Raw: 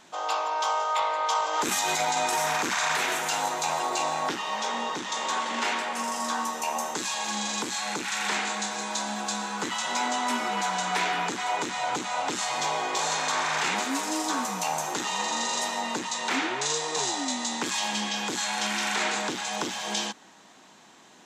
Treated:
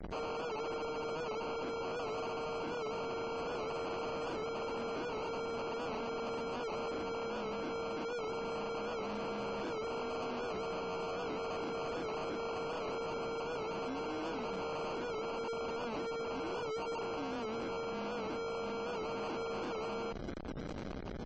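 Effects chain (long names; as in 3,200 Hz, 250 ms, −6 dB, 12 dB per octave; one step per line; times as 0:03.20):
samples sorted by size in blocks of 32 samples
in parallel at −2 dB: brickwall limiter −26.5 dBFS, peak gain reduction 10.5 dB
on the sum: comparator with hysteresis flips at −41.5 dBFS
graphic EQ with 15 bands 100 Hz −6 dB, 1,000 Hz −6 dB, 2,500 Hz −11 dB
decimation without filtering 24×
low-pass filter 4,100 Hz 12 dB per octave
low-shelf EQ 140 Hz −12 dB
wave folding −27.5 dBFS
gate on every frequency bin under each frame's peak −30 dB strong
wow of a warped record 78 rpm, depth 100 cents
level −7 dB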